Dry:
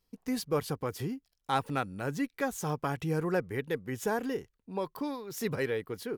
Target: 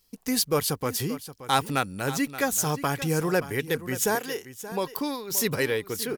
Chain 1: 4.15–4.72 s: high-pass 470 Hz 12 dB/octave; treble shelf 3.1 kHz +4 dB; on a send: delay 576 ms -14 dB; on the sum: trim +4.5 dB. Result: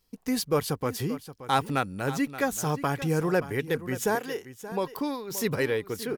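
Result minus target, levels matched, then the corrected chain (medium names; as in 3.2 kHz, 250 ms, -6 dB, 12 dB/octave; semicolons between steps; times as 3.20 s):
8 kHz band -6.0 dB
4.15–4.72 s: high-pass 470 Hz 12 dB/octave; treble shelf 3.1 kHz +13 dB; on a send: delay 576 ms -14 dB; on the sum: trim +4.5 dB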